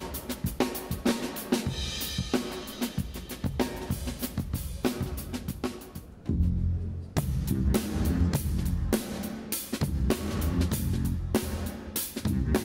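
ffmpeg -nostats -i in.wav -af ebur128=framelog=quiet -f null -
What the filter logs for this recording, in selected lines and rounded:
Integrated loudness:
  I:         -30.8 LUFS
  Threshold: -40.9 LUFS
Loudness range:
  LRA:         3.9 LU
  Threshold: -50.9 LUFS
  LRA low:   -33.3 LUFS
  LRA high:  -29.4 LUFS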